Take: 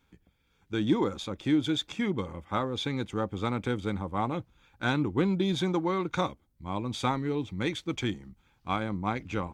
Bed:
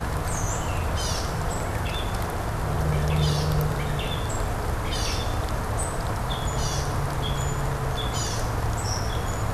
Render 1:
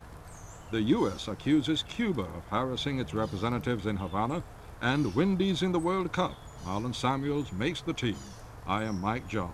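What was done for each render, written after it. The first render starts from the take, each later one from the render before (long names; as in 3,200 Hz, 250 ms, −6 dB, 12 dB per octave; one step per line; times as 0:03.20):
mix in bed −20 dB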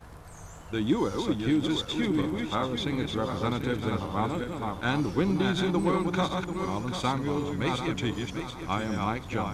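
feedback delay that plays each chunk backwards 370 ms, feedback 55%, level −4 dB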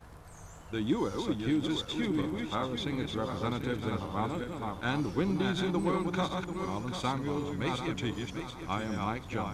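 level −4 dB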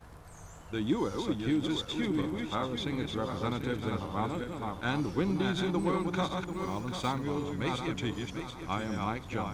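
0:06.48–0:07.24: one scale factor per block 7 bits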